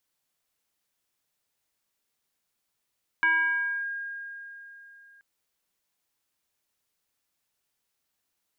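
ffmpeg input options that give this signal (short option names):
-f lavfi -i "aevalsrc='0.119*pow(10,-3*t/3.43)*sin(2*PI*1620*t+0.67*clip(1-t/0.63,0,1)*sin(2*PI*0.4*1620*t))':d=1.98:s=44100"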